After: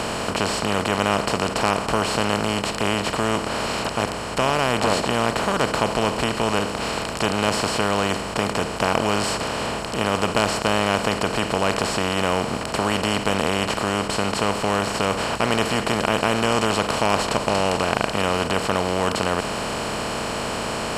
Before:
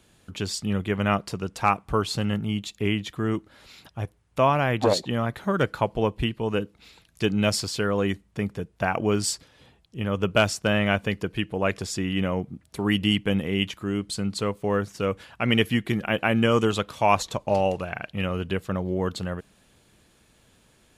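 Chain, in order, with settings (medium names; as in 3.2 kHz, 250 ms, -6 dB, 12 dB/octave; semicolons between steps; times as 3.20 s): spectral levelling over time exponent 0.2; trim -7 dB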